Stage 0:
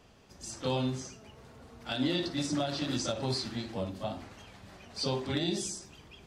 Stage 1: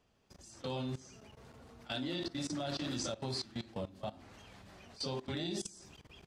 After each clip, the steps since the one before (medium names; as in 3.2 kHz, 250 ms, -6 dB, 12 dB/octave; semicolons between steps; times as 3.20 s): level held to a coarse grid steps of 18 dB; trim -1.5 dB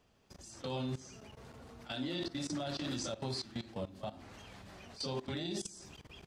peak limiter -32.5 dBFS, peak gain reduction 7.5 dB; trim +3 dB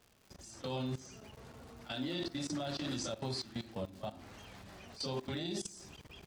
crackle 180 per s -50 dBFS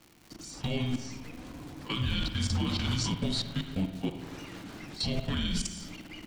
frequency shift -380 Hz; spring tank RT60 1.6 s, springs 45/54 ms, chirp 60 ms, DRR 7.5 dB; trim +8 dB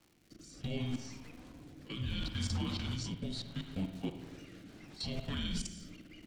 rotary cabinet horn 0.7 Hz; trim -5.5 dB